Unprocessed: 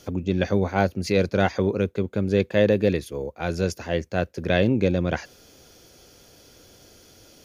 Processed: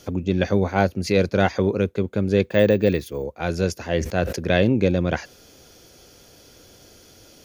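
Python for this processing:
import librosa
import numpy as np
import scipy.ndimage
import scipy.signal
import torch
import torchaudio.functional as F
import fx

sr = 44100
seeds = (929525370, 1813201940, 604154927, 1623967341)

y = fx.resample_bad(x, sr, factor=2, down='filtered', up='hold', at=(2.45, 3.24))
y = fx.sustainer(y, sr, db_per_s=83.0, at=(3.9, 4.39))
y = y * librosa.db_to_amplitude(2.0)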